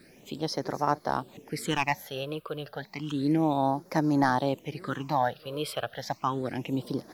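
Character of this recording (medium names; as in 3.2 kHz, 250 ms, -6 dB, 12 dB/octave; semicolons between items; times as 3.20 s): phasing stages 8, 0.31 Hz, lowest notch 250–3000 Hz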